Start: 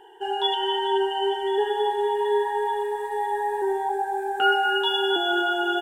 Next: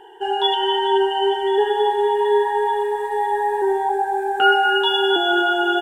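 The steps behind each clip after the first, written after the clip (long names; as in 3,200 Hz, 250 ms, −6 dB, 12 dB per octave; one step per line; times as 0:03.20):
high-shelf EQ 5,500 Hz −4.5 dB
level +5.5 dB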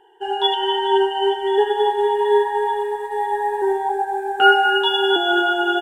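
expander for the loud parts 1.5 to 1, over −37 dBFS
level +3 dB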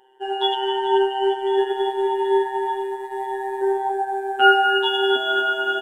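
phases set to zero 130 Hz
level −1 dB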